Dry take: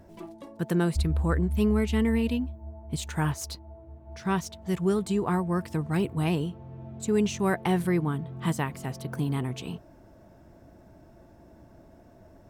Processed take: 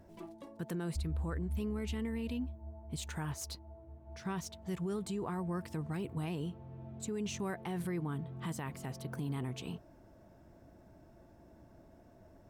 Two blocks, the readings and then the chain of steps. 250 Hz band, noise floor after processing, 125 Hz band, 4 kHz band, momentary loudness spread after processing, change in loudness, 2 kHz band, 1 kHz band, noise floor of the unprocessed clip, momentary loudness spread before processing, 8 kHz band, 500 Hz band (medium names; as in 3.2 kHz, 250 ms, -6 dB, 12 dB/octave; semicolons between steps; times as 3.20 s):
-11.5 dB, -60 dBFS, -10.0 dB, -8.5 dB, 11 LU, -11.5 dB, -12.0 dB, -12.0 dB, -54 dBFS, 18 LU, -7.0 dB, -12.0 dB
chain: peak limiter -24 dBFS, peak gain reduction 10 dB; trim -6 dB